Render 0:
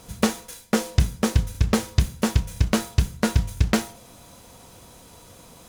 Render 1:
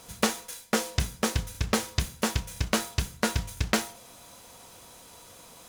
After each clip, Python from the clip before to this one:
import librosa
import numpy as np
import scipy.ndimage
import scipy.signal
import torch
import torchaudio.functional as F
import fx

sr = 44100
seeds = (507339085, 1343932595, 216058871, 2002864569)

y = fx.low_shelf(x, sr, hz=380.0, db=-10.0)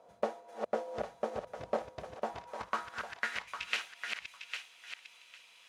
y = fx.reverse_delay(x, sr, ms=437, wet_db=-4.5)
y = fx.filter_sweep_bandpass(y, sr, from_hz=620.0, to_hz=2600.0, start_s=2.14, end_s=3.61, q=3.3)
y = fx.echo_thinned(y, sr, ms=803, feedback_pct=18, hz=1100.0, wet_db=-6.0)
y = y * 10.0 ** (1.0 / 20.0)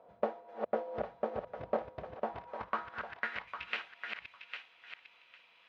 y = fx.air_absorb(x, sr, metres=360.0)
y = y * 10.0 ** (1.5 / 20.0)